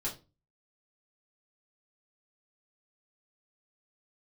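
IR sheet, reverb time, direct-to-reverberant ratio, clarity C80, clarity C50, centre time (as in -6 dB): 0.30 s, -5.5 dB, 18.0 dB, 11.5 dB, 21 ms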